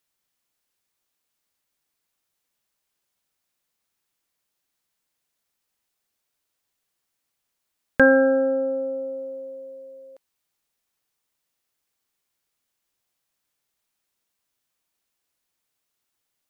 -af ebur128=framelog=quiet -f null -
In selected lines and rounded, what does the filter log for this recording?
Integrated loudness:
  I:         -20.7 LUFS
  Threshold: -33.0 LUFS
Loudness range:
  LRA:        16.6 LU
  Threshold: -46.0 LUFS
  LRA low:   -40.2 LUFS
  LRA high:  -23.6 LUFS